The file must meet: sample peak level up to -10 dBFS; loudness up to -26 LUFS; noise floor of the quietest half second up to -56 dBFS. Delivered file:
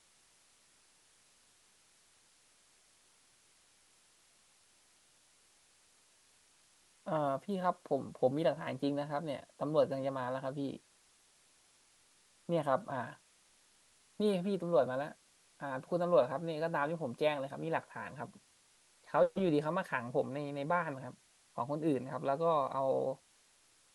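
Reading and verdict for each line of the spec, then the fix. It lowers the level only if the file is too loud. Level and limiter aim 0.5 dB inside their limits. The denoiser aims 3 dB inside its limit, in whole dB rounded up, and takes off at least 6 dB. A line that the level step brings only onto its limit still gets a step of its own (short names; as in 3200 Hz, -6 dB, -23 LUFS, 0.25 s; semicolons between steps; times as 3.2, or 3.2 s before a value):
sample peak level -16.0 dBFS: OK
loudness -35.5 LUFS: OK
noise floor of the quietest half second -68 dBFS: OK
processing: none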